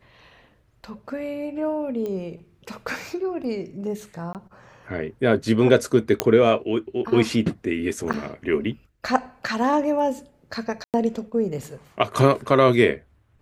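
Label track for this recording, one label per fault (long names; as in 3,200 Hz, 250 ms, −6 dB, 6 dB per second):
2.060000	2.060000	click −20 dBFS
4.330000	4.350000	drop-out 18 ms
6.200000	6.200000	click −2 dBFS
8.130000	8.140000	drop-out 8.3 ms
10.840000	10.940000	drop-out 98 ms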